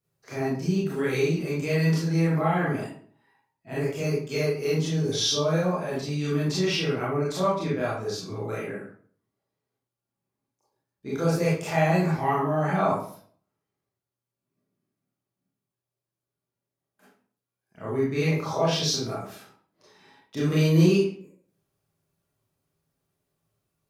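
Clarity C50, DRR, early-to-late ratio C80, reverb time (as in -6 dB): 0.5 dB, -8.0 dB, 6.5 dB, 0.50 s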